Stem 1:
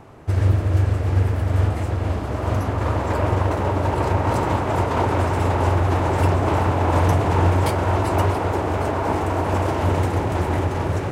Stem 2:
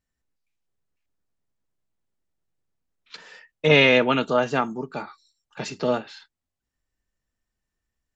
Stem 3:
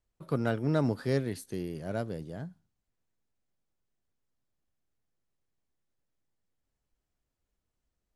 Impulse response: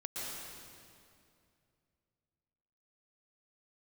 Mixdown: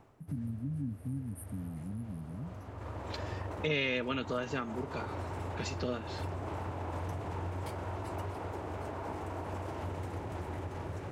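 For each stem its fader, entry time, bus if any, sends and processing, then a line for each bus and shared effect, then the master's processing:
-14.5 dB, 0.00 s, no send, auto duck -10 dB, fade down 0.25 s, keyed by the third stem
+1.0 dB, 0.00 s, no send, peaking EQ 790 Hz -13.5 dB 0.6 oct
+0.5 dB, 0.00 s, no send, FFT band-reject 300–8400 Hz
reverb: none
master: compression 2.5:1, threshold -37 dBFS, peak gain reduction 16 dB

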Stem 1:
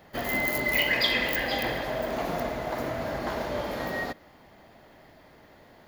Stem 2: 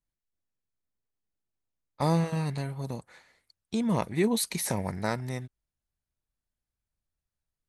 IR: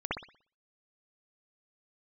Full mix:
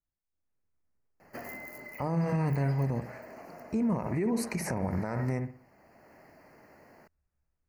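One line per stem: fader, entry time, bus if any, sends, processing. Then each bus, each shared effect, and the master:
-2.5 dB, 1.20 s, no send, high-pass 120 Hz; compression 10:1, threshold -32 dBFS, peak gain reduction 13 dB; auto duck -9 dB, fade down 0.95 s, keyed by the second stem
-4.5 dB, 0.00 s, send -18 dB, low-pass 1.6 kHz 6 dB/octave; hum notches 50/100/150/200 Hz; level rider gain up to 11 dB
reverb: on, pre-delay 59 ms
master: Butterworth band-stop 3.5 kHz, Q 1.7; peaking EQ 74 Hz +8 dB 0.25 oct; peak limiter -22 dBFS, peak gain reduction 14 dB

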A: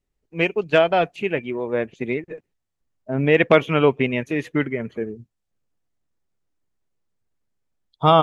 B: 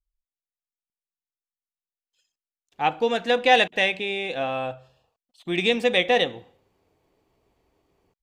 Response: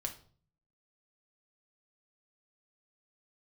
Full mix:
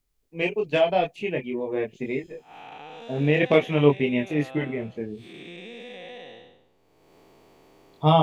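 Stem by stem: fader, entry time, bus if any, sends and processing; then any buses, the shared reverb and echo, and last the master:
0.0 dB, 0.00 s, no send, chorus voices 6, 0.47 Hz, delay 24 ms, depth 4.5 ms; peaking EQ 1.4 kHz -11.5 dB 0.57 oct
-14.5 dB, 0.00 s, no send, spectral blur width 313 ms; three bands compressed up and down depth 100%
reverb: none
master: none

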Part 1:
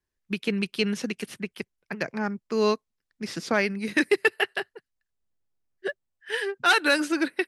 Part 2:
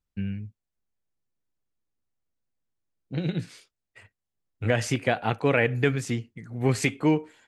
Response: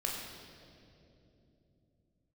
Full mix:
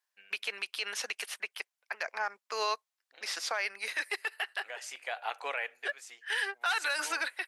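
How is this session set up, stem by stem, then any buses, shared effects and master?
+2.5 dB, 0.00 s, no send, none
-3.5 dB, 0.00 s, no send, treble shelf 4.2 kHz +6 dB; auto duck -11 dB, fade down 0.40 s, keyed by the first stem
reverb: none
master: high-pass 680 Hz 24 dB/octave; peak limiter -22 dBFS, peak gain reduction 16 dB

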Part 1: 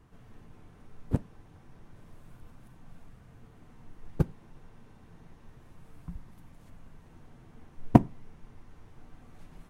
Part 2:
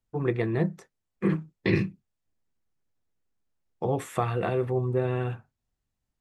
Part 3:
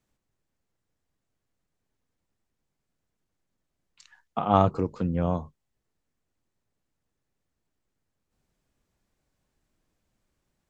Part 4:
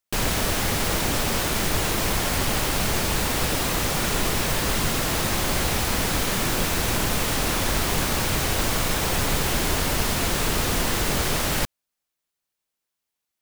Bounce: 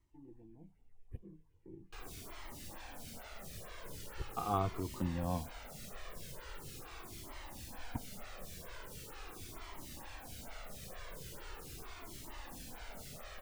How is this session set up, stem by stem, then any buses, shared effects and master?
-12.0 dB, 0.00 s, no send, static phaser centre 910 Hz, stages 8; phase shifter stages 4, 2.7 Hz, lowest notch 170–1700 Hz
-15.5 dB, 0.00 s, no send, cascade formant filter u
-1.5 dB, 0.00 s, no send, compression, threshold -21 dBFS, peak gain reduction 8 dB; tremolo 2.6 Hz, depth 41%
-18.5 dB, 1.80 s, no send, lamp-driven phase shifter 2.2 Hz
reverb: none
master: Shepard-style flanger falling 0.41 Hz

